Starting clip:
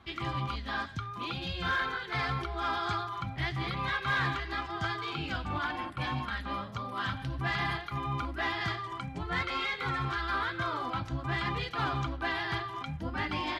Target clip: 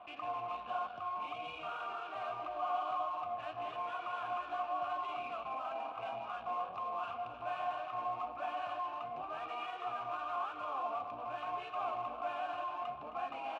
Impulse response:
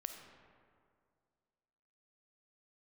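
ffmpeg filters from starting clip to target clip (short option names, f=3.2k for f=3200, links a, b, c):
-filter_complex "[0:a]asplit=2[a][b];[b]aecho=0:1:313:0.15[c];[a][c]amix=inputs=2:normalize=0,asoftclip=type=tanh:threshold=-34dB,bass=f=250:g=-1,treble=f=4k:g=-7,aeval=exprs='0.0282*(cos(1*acos(clip(val(0)/0.0282,-1,1)))-cos(1*PI/2))+0.00282*(cos(3*acos(clip(val(0)/0.0282,-1,1)))-cos(3*PI/2))+0.00112*(cos(4*acos(clip(val(0)/0.0282,-1,1)))-cos(4*PI/2))+0.00158*(cos(8*acos(clip(val(0)/0.0282,-1,1)))-cos(8*PI/2))':c=same,bandreject=f=50:t=h:w=6,bandreject=f=100:t=h:w=6,bandreject=f=150:t=h:w=6,bandreject=f=200:t=h:w=6,asetrate=39289,aresample=44100,atempo=1.12246,alimiter=level_in=17.5dB:limit=-24dB:level=0:latency=1:release=191,volume=-17.5dB,asplit=3[d][e][f];[d]bandpass=f=730:t=q:w=8,volume=0dB[g];[e]bandpass=f=1.09k:t=q:w=8,volume=-6dB[h];[f]bandpass=f=2.44k:t=q:w=8,volume=-9dB[i];[g][h][i]amix=inputs=3:normalize=0,asplit=2[j][k];[k]aecho=0:1:265:0.251[l];[j][l]amix=inputs=2:normalize=0,volume=18dB"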